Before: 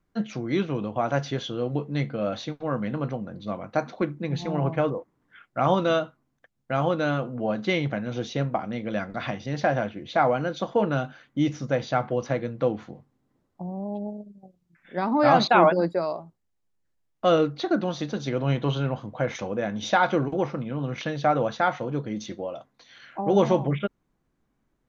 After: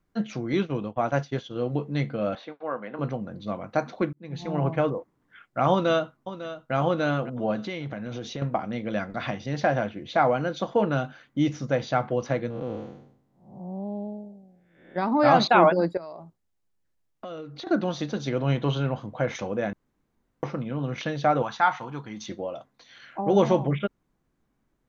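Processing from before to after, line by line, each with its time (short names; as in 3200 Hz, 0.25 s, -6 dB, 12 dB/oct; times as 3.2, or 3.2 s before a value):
0.53–1.56 expander -28 dBFS
2.35–2.99 BPF 450–2200 Hz
4.13–4.59 fade in
5.71–6.74 echo throw 0.55 s, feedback 40%, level -13 dB
7.62–8.42 compressor 4:1, threshold -30 dBFS
12.5–14.96 time blur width 0.276 s
15.97–17.67 compressor 8:1, threshold -35 dBFS
19.73–20.43 room tone
21.42–22.28 resonant low shelf 710 Hz -6.5 dB, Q 3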